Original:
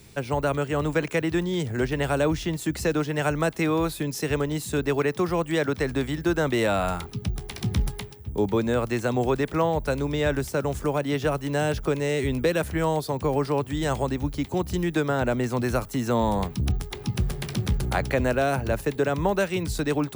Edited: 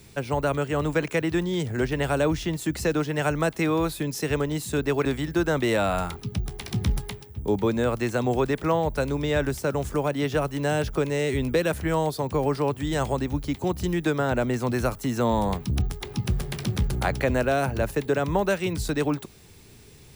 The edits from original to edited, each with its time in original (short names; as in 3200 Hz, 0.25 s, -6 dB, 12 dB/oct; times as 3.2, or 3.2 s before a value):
5.05–5.95 cut